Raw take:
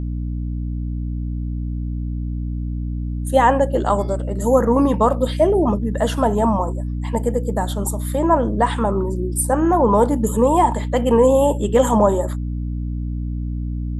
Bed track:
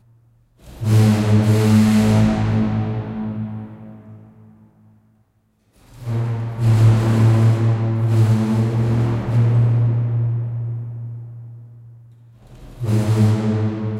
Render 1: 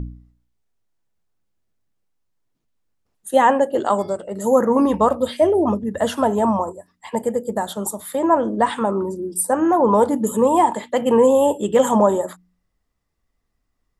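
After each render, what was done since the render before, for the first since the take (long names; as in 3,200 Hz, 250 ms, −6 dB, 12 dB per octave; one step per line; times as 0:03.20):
hum removal 60 Hz, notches 5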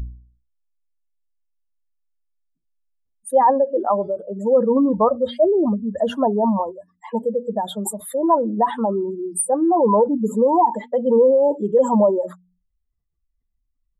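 expanding power law on the bin magnitudes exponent 2.1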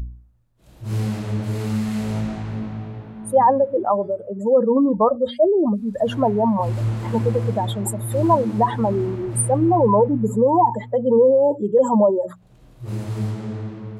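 mix in bed track −10 dB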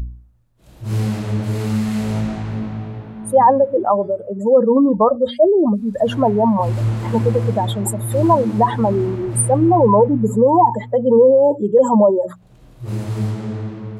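level +3.5 dB
brickwall limiter −3 dBFS, peak gain reduction 2 dB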